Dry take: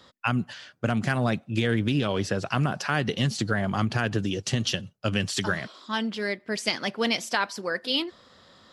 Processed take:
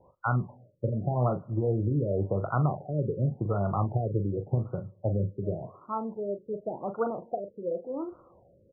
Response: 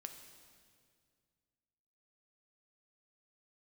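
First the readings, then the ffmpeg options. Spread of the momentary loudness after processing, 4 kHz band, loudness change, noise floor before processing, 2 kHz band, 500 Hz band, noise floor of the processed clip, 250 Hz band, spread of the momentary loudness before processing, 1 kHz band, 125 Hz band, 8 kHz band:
8 LU, below −40 dB, −3.5 dB, −60 dBFS, −16.5 dB, 0.0 dB, −62 dBFS, −5.5 dB, 5 LU, −3.0 dB, +0.5 dB, below −40 dB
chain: -filter_complex "[0:a]equalizer=frequency=240:width=2.1:gain=-11,asplit=2[link_01][link_02];[link_02]adelay=40,volume=-9dB[link_03];[link_01][link_03]amix=inputs=2:normalize=0,asplit=2[link_04][link_05];[1:a]atrim=start_sample=2205,afade=type=out:start_time=0.32:duration=0.01,atrim=end_sample=14553,lowpass=frequency=1400:width=0.5412,lowpass=frequency=1400:width=1.3066[link_06];[link_05][link_06]afir=irnorm=-1:irlink=0,volume=-11dB[link_07];[link_04][link_07]amix=inputs=2:normalize=0,afftfilt=real='re*lt(b*sr/1024,570*pow(1500/570,0.5+0.5*sin(2*PI*0.89*pts/sr)))':imag='im*lt(b*sr/1024,570*pow(1500/570,0.5+0.5*sin(2*PI*0.89*pts/sr)))':win_size=1024:overlap=0.75"

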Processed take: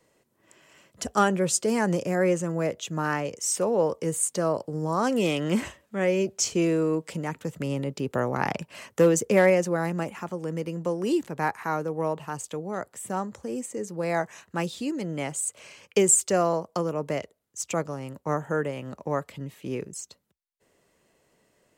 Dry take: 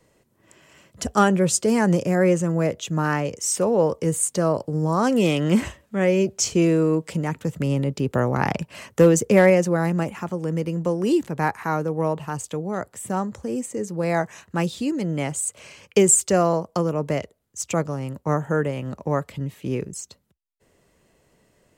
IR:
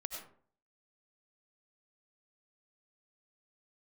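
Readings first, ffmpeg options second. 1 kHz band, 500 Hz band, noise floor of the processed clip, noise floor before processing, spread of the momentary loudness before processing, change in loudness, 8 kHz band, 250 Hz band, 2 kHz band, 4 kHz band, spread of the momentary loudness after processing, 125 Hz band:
−3.5 dB, −4.0 dB, −70 dBFS, −65 dBFS, 12 LU, −4.5 dB, −3.0 dB, −6.0 dB, −3.0 dB, −3.0 dB, 13 LU, −8.0 dB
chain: -af "lowshelf=frequency=150:gain=-10.5,volume=-3dB"

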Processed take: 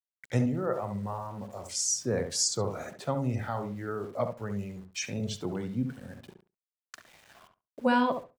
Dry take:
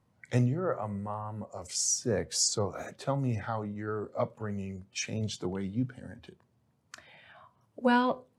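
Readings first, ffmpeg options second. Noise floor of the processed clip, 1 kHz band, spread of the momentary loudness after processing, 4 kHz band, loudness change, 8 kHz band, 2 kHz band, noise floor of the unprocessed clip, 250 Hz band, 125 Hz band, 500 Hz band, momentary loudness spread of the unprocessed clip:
below −85 dBFS, +0.5 dB, 11 LU, 0.0 dB, +0.5 dB, 0.0 dB, 0.0 dB, −72 dBFS, +1.0 dB, −0.5 dB, +1.0 dB, 12 LU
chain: -filter_complex "[0:a]aeval=exprs='val(0)*gte(abs(val(0)),0.00251)':channel_layout=same,asplit=2[link_01][link_02];[link_02]adelay=69,lowpass=frequency=1400:poles=1,volume=-6dB,asplit=2[link_03][link_04];[link_04]adelay=69,lowpass=frequency=1400:poles=1,volume=0.18,asplit=2[link_05][link_06];[link_06]adelay=69,lowpass=frequency=1400:poles=1,volume=0.18[link_07];[link_01][link_03][link_05][link_07]amix=inputs=4:normalize=0"

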